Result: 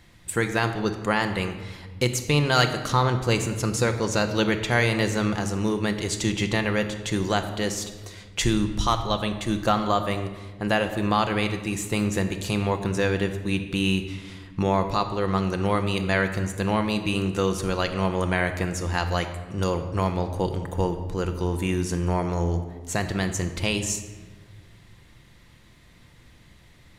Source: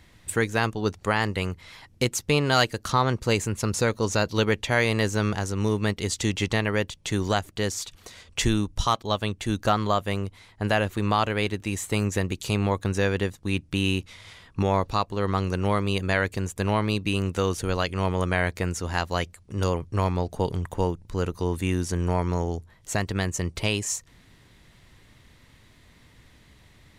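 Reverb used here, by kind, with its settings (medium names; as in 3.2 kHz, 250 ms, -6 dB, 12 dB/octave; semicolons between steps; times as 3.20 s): simulated room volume 1200 m³, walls mixed, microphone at 0.83 m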